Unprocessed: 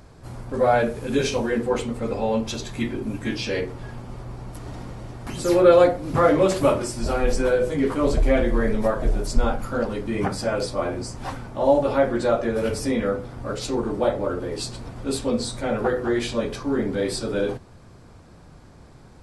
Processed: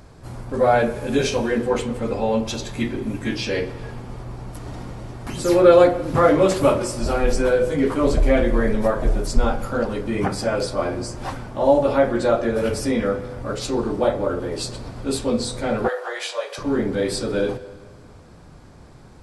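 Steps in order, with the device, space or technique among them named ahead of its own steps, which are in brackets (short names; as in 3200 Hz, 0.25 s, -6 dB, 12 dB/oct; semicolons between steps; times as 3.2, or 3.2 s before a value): filtered reverb send (on a send: HPF 260 Hz 24 dB/oct + LPF 4200 Hz + reverb RT60 1.6 s, pre-delay 0.112 s, DRR 16 dB); 15.88–16.58 on the sum: steep high-pass 530 Hz 36 dB/oct; gain +2 dB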